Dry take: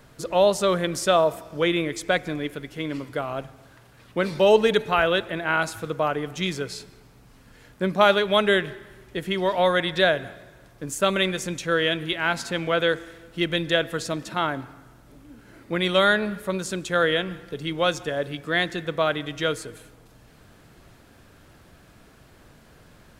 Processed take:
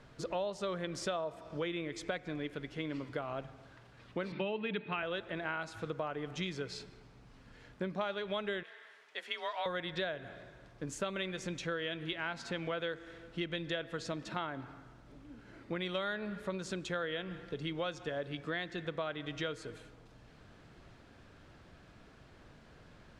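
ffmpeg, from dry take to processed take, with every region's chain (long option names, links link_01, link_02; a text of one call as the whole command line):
ffmpeg -i in.wav -filter_complex "[0:a]asettb=1/sr,asplit=3[link_01][link_02][link_03];[link_01]atrim=end=4.324[link_04];[link_02]atrim=start=4.32:end=5.03,asetpts=PTS-STARTPTS,afade=type=in:duration=0.004:curve=qsin,afade=type=out:start_time=0.706:duration=0.004:curve=qsin,highpass=110,equalizer=frequency=190:width_type=q:width=4:gain=7,equalizer=frequency=320:width_type=q:width=4:gain=6,equalizer=frequency=490:width_type=q:width=4:gain=-7,equalizer=frequency=730:width_type=q:width=4:gain=-4,equalizer=frequency=2500:width_type=q:width=4:gain=8,lowpass=frequency=3700:width=0.5412,lowpass=frequency=3700:width=1.3066,bandreject=frequency=50:width_type=h:width=6,bandreject=frequency=100:width_type=h:width=6,bandreject=frequency=150:width_type=h:width=6[link_05];[link_03]atrim=start=5.026[link_06];[link_04][link_05]acrossfade=duration=0.004:curve1=hsin:curve2=qsin[link_07];[link_07][link_06]acrossfade=duration=0.004:curve1=qsin:curve2=hsin,asettb=1/sr,asplit=3[link_08][link_09][link_10];[link_08]atrim=end=8.634[link_11];[link_09]atrim=start=8.63:end=9.66,asetpts=PTS-STARTPTS,afade=type=in:duration=0.004:curve=qsin,afade=type=out:start_time=1.026:duration=0.004:curve=qsin,highpass=890,afreqshift=36[link_12];[link_10]atrim=start=9.656[link_13];[link_11][link_12]acrossfade=duration=0.004:curve1=hsin:curve2=qsin[link_14];[link_14][link_13]acrossfade=duration=0.004:curve1=qsin:curve2=hsin,lowpass=5300,acompressor=threshold=-29dB:ratio=5,volume=-5.5dB" out.wav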